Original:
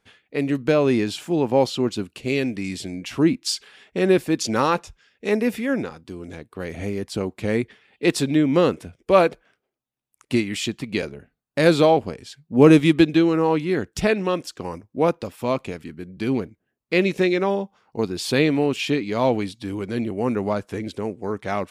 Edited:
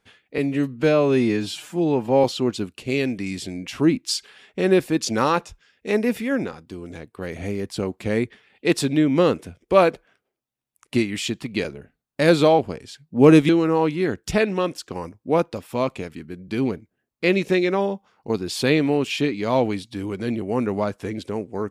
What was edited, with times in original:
0.38–1.62 stretch 1.5×
12.87–13.18 cut

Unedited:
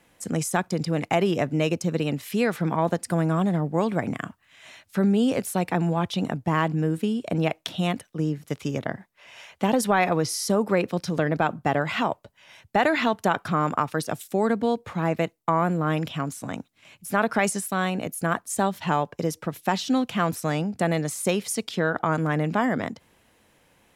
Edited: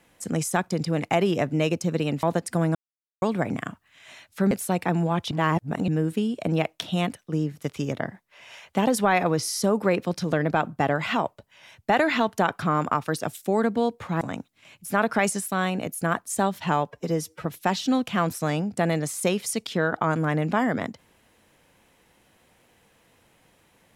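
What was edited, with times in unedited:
2.23–2.8 cut
3.32–3.79 mute
5.08–5.37 cut
6.17–6.74 reverse
15.07–16.41 cut
19.11–19.47 stretch 1.5×

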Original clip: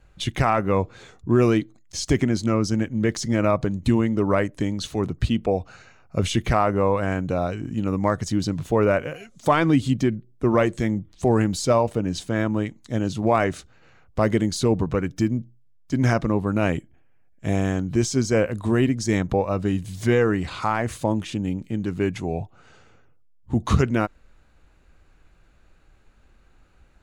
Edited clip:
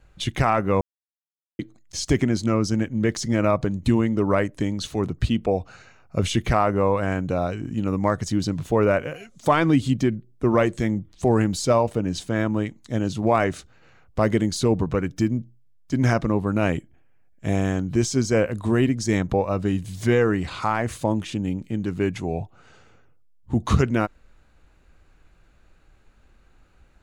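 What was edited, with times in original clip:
0.81–1.59 mute

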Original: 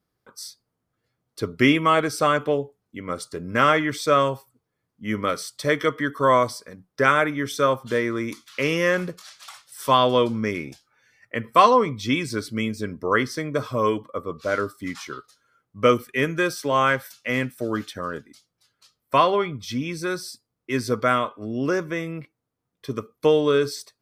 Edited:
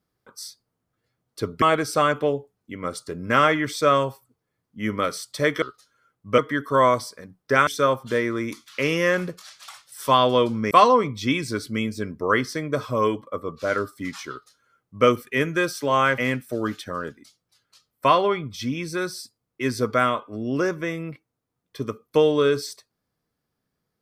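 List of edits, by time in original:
1.62–1.87 cut
7.16–7.47 cut
10.51–11.53 cut
15.12–15.88 copy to 5.87
17–17.27 cut

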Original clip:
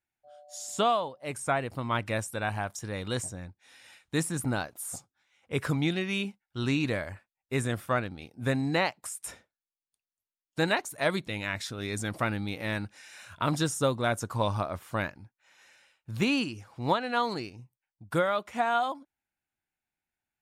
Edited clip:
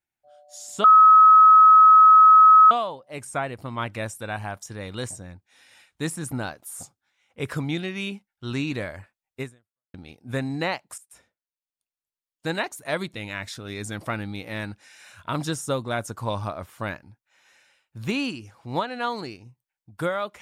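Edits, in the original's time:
0.84 add tone 1280 Hz -8.5 dBFS 1.87 s
7.54–8.07 fade out exponential
9.11–10.83 fade in, from -14.5 dB

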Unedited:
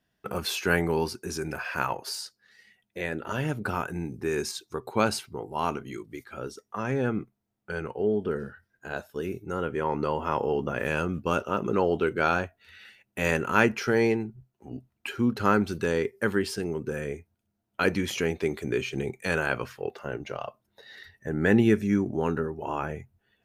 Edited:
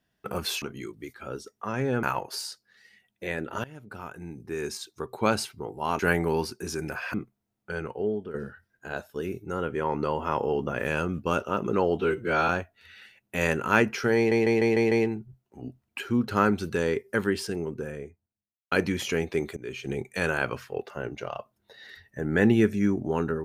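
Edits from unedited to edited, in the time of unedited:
0.62–1.77 swap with 5.73–7.14
3.38–4.97 fade in, from -20.5 dB
7.78–8.34 fade out equal-power, to -12.5 dB
11.99–12.32 stretch 1.5×
14 stutter 0.15 s, 6 plays
16.5–17.8 studio fade out
18.65–19.05 fade in, from -20.5 dB

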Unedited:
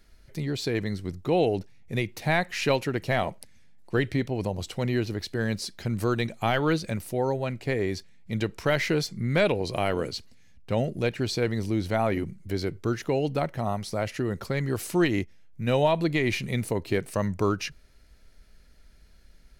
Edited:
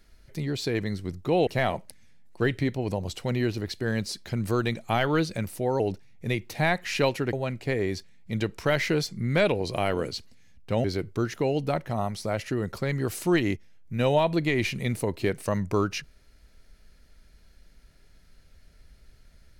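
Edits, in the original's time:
1.47–3 move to 7.33
10.84–12.52 cut

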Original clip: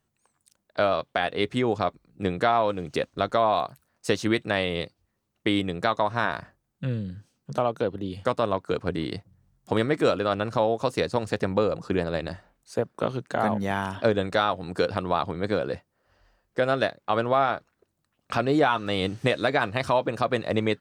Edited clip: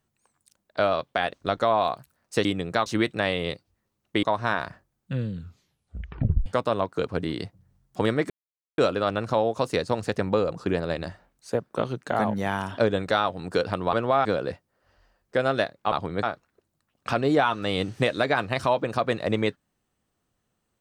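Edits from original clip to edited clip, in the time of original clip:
1.33–3.05 cut
5.54–5.95 move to 4.17
7.03 tape stop 1.15 s
10.02 insert silence 0.48 s
15.17–15.48 swap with 17.15–17.47

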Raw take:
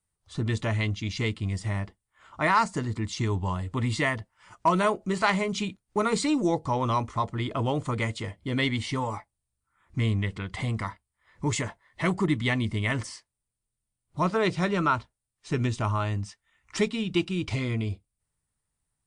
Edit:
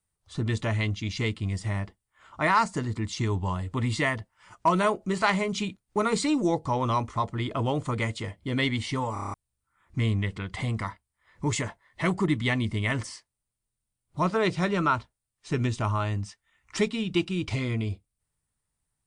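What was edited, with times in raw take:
9.13 stutter in place 0.03 s, 7 plays

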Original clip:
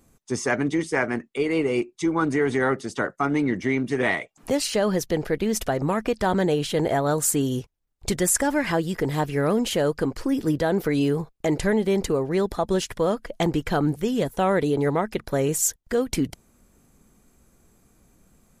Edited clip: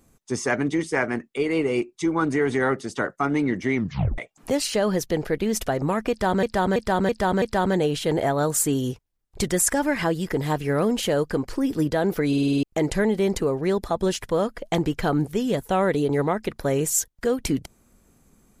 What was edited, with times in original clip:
3.75 tape stop 0.43 s
6.1–6.43 loop, 5 plays
10.96 stutter in place 0.05 s, 7 plays

